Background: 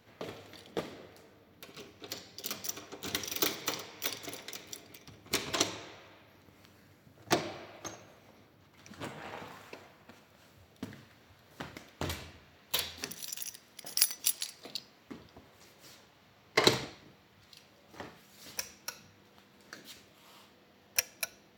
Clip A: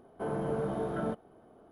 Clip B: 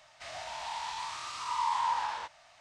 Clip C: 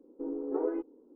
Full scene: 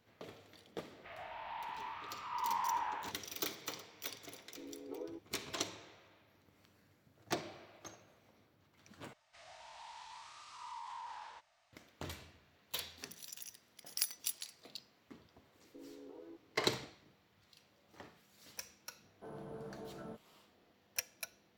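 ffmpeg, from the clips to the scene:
-filter_complex "[2:a]asplit=2[a][b];[3:a]asplit=2[c][d];[0:a]volume=-9dB[e];[a]lowpass=f=2.8k:w=0.5412,lowpass=f=2.8k:w=1.3066[f];[b]alimiter=level_in=1.5dB:limit=-24dB:level=0:latency=1:release=22,volume=-1.5dB[g];[d]acompressor=threshold=-37dB:ratio=6:attack=3.2:release=140:knee=1:detection=peak[h];[e]asplit=2[i][j];[i]atrim=end=9.134[k];[g]atrim=end=2.6,asetpts=PTS-STARTPTS,volume=-14.5dB[l];[j]atrim=start=11.726[m];[f]atrim=end=2.6,asetpts=PTS-STARTPTS,volume=-6dB,afade=t=in:d=0.004:c=hsin,afade=t=out:st=2.596:d=0.004:c=hsin,adelay=840[n];[c]atrim=end=1.15,asetpts=PTS-STARTPTS,volume=-14.5dB,afade=t=in:d=0.004:c=hsin,afade=t=out:st=1.146:d=0.004:c=hsin,adelay=192717S[o];[h]atrim=end=1.15,asetpts=PTS-STARTPTS,volume=-12.5dB,afade=t=in:d=0.004:c=hsin,afade=t=out:st=1.146:d=0.004:c=hsin,adelay=15550[p];[1:a]atrim=end=1.71,asetpts=PTS-STARTPTS,volume=-15.5dB,afade=t=in:d=0.004:c=hsin,afade=t=out:st=1.706:d=0.004:c=hsin,adelay=19020[q];[k][l]acrossfade=d=0.004:c1=hsin:c2=hsin[r];[r][m]acrossfade=d=0.004:c1=hsin:c2=hsin[s];[s][n][o][p][q]amix=inputs=5:normalize=0"

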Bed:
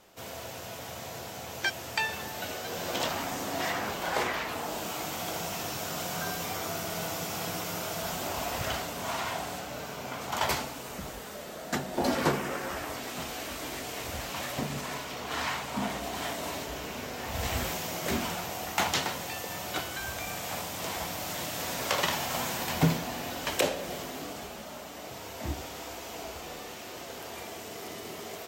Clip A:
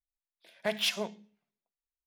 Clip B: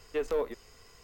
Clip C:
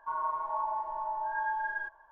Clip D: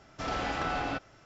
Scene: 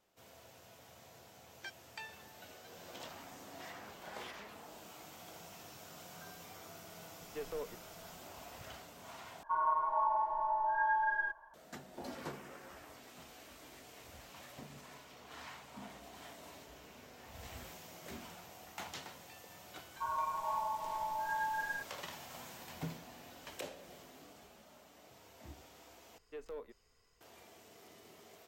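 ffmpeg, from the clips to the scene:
-filter_complex "[2:a]asplit=2[a][b];[3:a]asplit=2[c][d];[0:a]volume=-18dB[e];[1:a]acompressor=threshold=-37dB:ratio=6:attack=3.2:release=140:knee=1:detection=peak[f];[c]acontrast=56[g];[e]asplit=3[h][i][j];[h]atrim=end=9.434[k];[g]atrim=end=2.11,asetpts=PTS-STARTPTS,volume=-5.5dB[l];[i]atrim=start=11.536:end=26.184[m];[b]atrim=end=1.03,asetpts=PTS-STARTPTS,volume=-16dB[n];[j]atrim=start=27.206[o];[f]atrim=end=2.06,asetpts=PTS-STARTPTS,volume=-14dB,afade=t=in:d=0.004:c=hsin,afade=t=out:st=2.056:d=0.004:c=hsin,adelay=3420[p];[a]atrim=end=1.03,asetpts=PTS-STARTPTS,volume=-12dB,afade=t=in:d=0.004:c=hsin,afade=t=out:st=1.026:d=0.004:c=hsin,adelay=7210[q];[d]atrim=end=2.11,asetpts=PTS-STARTPTS,volume=-4dB,afade=t=in:d=0.004:c=hsin,afade=t=out:st=2.106:d=0.004:c=hsin,adelay=19940[r];[k][l]acrossfade=d=0.004:c1=hsin:c2=hsin[s];[s][m]acrossfade=d=0.004:c1=hsin:c2=hsin[t];[t][n]acrossfade=d=0.004:c1=hsin:c2=hsin[u];[u][o]acrossfade=d=0.004:c1=hsin:c2=hsin[v];[v][p][q][r]amix=inputs=4:normalize=0"

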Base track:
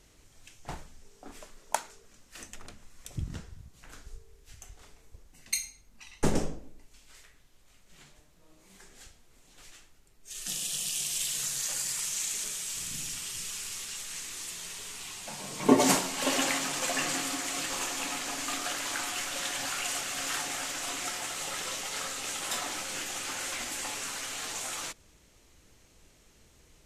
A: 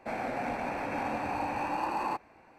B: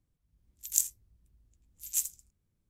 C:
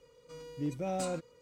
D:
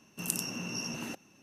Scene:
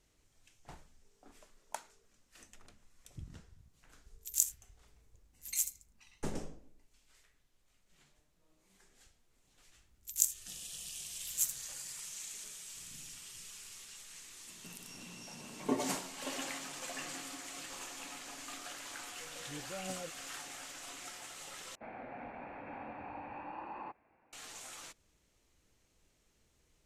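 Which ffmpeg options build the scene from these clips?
-filter_complex "[2:a]asplit=2[a][b];[0:a]volume=-12.5dB[c];[4:a]acompressor=threshold=-48dB:ratio=6:attack=3.2:release=140:knee=1:detection=peak[d];[3:a]aphaser=in_gain=1:out_gain=1:delay=3:decay=0.5:speed=2:type=triangular[e];[1:a]lowpass=f=3k:w=0.5412,lowpass=f=3k:w=1.3066[f];[c]asplit=2[g][h];[g]atrim=end=21.754[i];[f]atrim=end=2.58,asetpts=PTS-STARTPTS,volume=-13dB[j];[h]atrim=start=24.326[k];[a]atrim=end=2.69,asetpts=PTS-STARTPTS,volume=-3dB,afade=t=in:d=0.004:c=hsin,afade=t=out:st=2.686:d=0.004:c=hsin,adelay=3620[l];[b]atrim=end=2.69,asetpts=PTS-STARTPTS,volume=-2.5dB,afade=t=in:d=0.004:c=hsin,afade=t=out:st=2.686:d=0.004:c=hsin,adelay=9440[m];[d]atrim=end=1.42,asetpts=PTS-STARTPTS,volume=-1.5dB,afade=t=in:d=0.004:c=hsin,afade=t=out:st=1.416:d=0.004:c=hsin,adelay=14470[n];[e]atrim=end=1.41,asetpts=PTS-STARTPTS,volume=-11dB,afade=t=in:d=0.004:c=hsin,afade=t=out:st=1.406:d=0.004:c=hsin,adelay=18900[o];[i][j]acrossfade=d=0.004:c1=hsin:c2=hsin[p];[p][k]acrossfade=d=0.004:c1=hsin:c2=hsin[q];[q][l][m][n][o]amix=inputs=5:normalize=0"

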